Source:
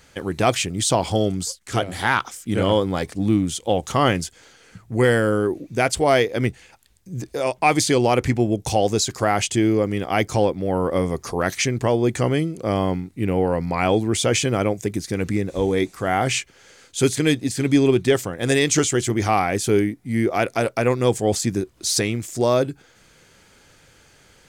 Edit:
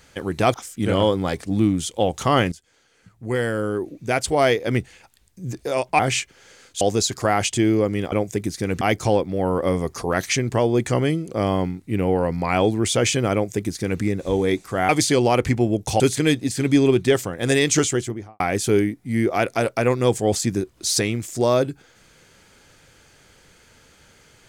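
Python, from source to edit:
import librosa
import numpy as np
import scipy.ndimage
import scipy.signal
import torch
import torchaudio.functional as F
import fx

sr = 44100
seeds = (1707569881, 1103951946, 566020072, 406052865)

y = fx.studio_fade_out(x, sr, start_s=18.82, length_s=0.58)
y = fx.edit(y, sr, fx.cut(start_s=0.54, length_s=1.69),
    fx.fade_in_from(start_s=4.21, length_s=2.16, floor_db=-15.5),
    fx.swap(start_s=7.68, length_s=1.11, other_s=16.18, other_length_s=0.82),
    fx.duplicate(start_s=14.62, length_s=0.69, to_s=10.1), tone=tone)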